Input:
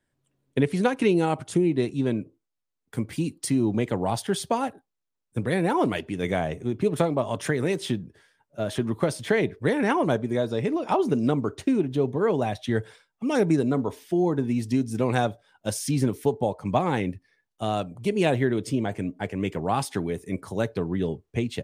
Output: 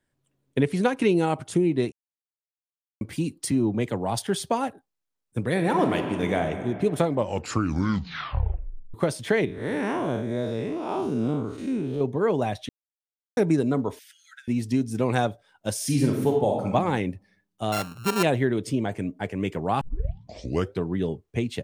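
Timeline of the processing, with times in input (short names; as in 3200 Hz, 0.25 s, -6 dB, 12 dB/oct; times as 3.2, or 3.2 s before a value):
1.92–3.01 mute
3.51–4.19 three-band expander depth 70%
5.49–6.43 reverb throw, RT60 2.4 s, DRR 5 dB
7.05 tape stop 1.89 s
9.45–12.01 time blur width 0.15 s
12.69–13.37 mute
13.99–14.48 brick-wall FIR high-pass 1300 Hz
15.75–16.73 reverb throw, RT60 0.84 s, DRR 0.5 dB
17.72–18.23 sample sorter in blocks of 32 samples
19.81 tape start 1.01 s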